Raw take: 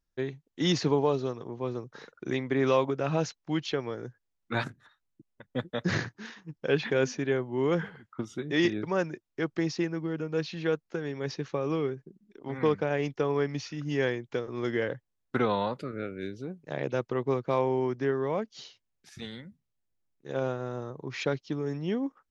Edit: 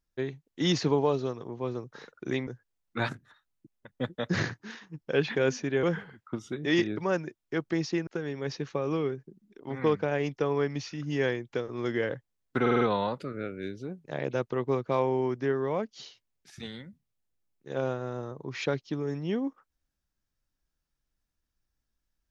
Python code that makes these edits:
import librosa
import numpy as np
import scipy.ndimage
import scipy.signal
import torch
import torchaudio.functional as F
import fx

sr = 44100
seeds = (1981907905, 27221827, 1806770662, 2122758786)

y = fx.edit(x, sr, fx.cut(start_s=2.47, length_s=1.55),
    fx.cut(start_s=7.38, length_s=0.31),
    fx.cut(start_s=9.93, length_s=0.93),
    fx.stutter(start_s=15.4, slice_s=0.05, count=5), tone=tone)